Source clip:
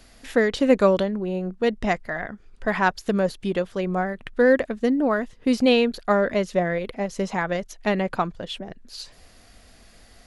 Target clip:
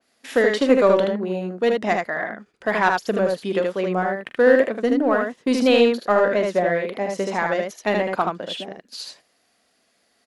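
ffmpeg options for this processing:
-filter_complex "[0:a]agate=range=-15dB:threshold=-44dB:ratio=16:detection=peak,highpass=260,asplit=2[a][b];[b]asoftclip=type=hard:threshold=-19.5dB,volume=-8.5dB[c];[a][c]amix=inputs=2:normalize=0,aecho=1:1:43|77:0.211|0.668,adynamicequalizer=threshold=0.0158:dfrequency=2900:dqfactor=0.7:tfrequency=2900:tqfactor=0.7:attack=5:release=100:ratio=0.375:range=3:mode=cutabove:tftype=highshelf"

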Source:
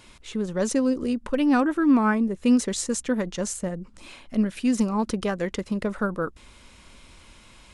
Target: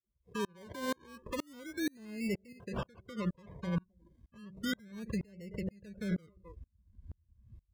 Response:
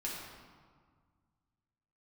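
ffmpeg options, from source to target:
-filter_complex "[0:a]asettb=1/sr,asplit=3[a][b][c];[a]atrim=end=2.524[d];[b]atrim=start=2.52:end=4.78,asetpts=PTS-STARTPTS,afade=t=in:d=0.004:c=qsin,afade=t=out:st=2.256:d=0.004:c=qsin,acompressor=threshold=-26dB:ratio=16[e];[c]atrim=start=4.776[f];[d][e]acrossfade=d=0.004:c1=hsin:c2=qsin[g];[g][f]acrossfade=d=0.004:c1=qsin:c2=hsin,firequalizer=gain_entry='entry(200,0);entry(320,3);entry(1500,-26);entry(7700,0)':delay=0.05:min_phase=1,asplit=2[h][i];[i]adelay=260,highpass=300,lowpass=3.4k,asoftclip=type=hard:threshold=-18.5dB,volume=-17dB[j];[h][j]amix=inputs=2:normalize=0,acrusher=samples=26:mix=1:aa=0.000001:lfo=1:lforange=15.6:lforate=0.32,bandreject=f=190.9:t=h:w=4,bandreject=f=381.8:t=h:w=4,bandreject=f=572.7:t=h:w=4,bandreject=f=763.6:t=h:w=4,afftdn=nr=26:nf=-41,acrossover=split=400[k][l];[l]acompressor=threshold=-31dB:ratio=8[m];[k][m]amix=inputs=2:normalize=0,asubboost=boost=5.5:cutoff=180,highpass=110,aecho=1:1:1.9:0.72,alimiter=level_in=2dB:limit=-24dB:level=0:latency=1:release=119,volume=-2dB,aeval=exprs='val(0)*pow(10,-34*if(lt(mod(-2.1*n/s,1),2*abs(-2.1)/1000),1-mod(-2.1*n/s,1)/(2*abs(-2.1)/1000),(mod(-2.1*n/s,1)-2*abs(-2.1)/1000)/(1-2*abs(-2.1)/1000))/20)':c=same,volume=4.5dB"

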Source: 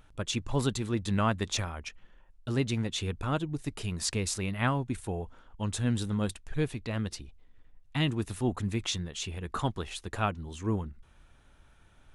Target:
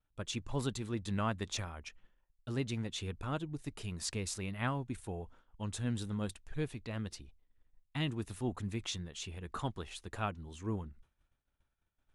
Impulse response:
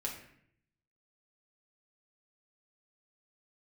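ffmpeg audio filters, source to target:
-af "agate=range=-33dB:threshold=-46dB:ratio=3:detection=peak,volume=-7dB"

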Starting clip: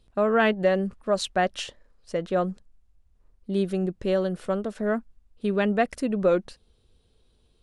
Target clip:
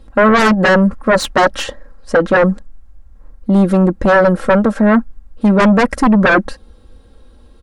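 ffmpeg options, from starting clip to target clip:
-af "aecho=1:1:3.7:0.7,aeval=exprs='0.473*sin(PI/2*5.01*val(0)/0.473)':c=same,highshelf=f=2.1k:t=q:w=1.5:g=-7.5"

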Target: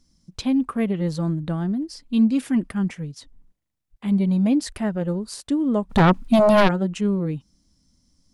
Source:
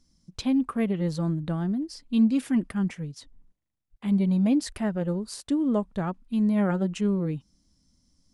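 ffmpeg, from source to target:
-filter_complex "[0:a]asplit=3[a][b][c];[a]afade=t=out:st=5.89:d=0.02[d];[b]aeval=exprs='0.211*sin(PI/2*3.98*val(0)/0.211)':c=same,afade=t=in:st=5.89:d=0.02,afade=t=out:st=6.67:d=0.02[e];[c]afade=t=in:st=6.67:d=0.02[f];[d][e][f]amix=inputs=3:normalize=0,volume=3dB"

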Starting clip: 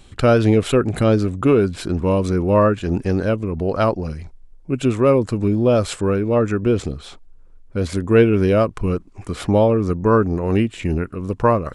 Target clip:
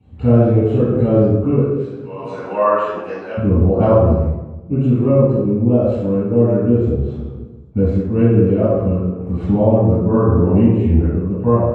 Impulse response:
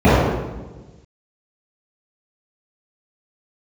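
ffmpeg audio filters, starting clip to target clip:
-filter_complex "[0:a]asettb=1/sr,asplit=3[a][b][c];[a]atrim=end=1.584[d];[b]atrim=start=1.58:end=3.37,asetpts=PTS-STARTPTS,afade=t=in:d=0.004:c=qsin,afade=t=out:st=1.786:d=0.004:c=qsin,highpass=1.3k[e];[c]atrim=start=3.366[f];[d][e]acrossfade=d=0.004:c1=hsin:c2=qsin[g];[g][f]acrossfade=d=0.004:c1=qsin:c2=hsin[h];[1:a]atrim=start_sample=2205,asetrate=48510,aresample=44100[i];[h][i]afir=irnorm=-1:irlink=0,dynaudnorm=f=310:g=3:m=11.5dB,volume=-1dB"

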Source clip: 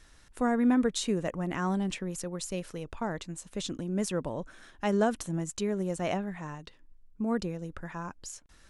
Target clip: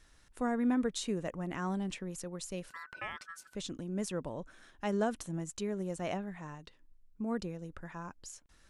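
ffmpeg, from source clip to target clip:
-filter_complex "[0:a]asettb=1/sr,asplit=3[a][b][c];[a]atrim=end=2.694[d];[b]atrim=start=2.69:end=3.55,asetpts=PTS-STARTPTS,afade=t=in:d=0.004:c=qsin,afade=t=out:st=0.856:d=0.004:c=qsin,aeval=exprs='val(0)*sin(2*PI*1500*n/s)':c=same[e];[c]atrim=start=3.546[f];[d][e]acrossfade=d=0.004:c1=hsin:c2=qsin[g];[g][f]acrossfade=d=0.004:c1=qsin:c2=hsin,volume=-5.5dB"

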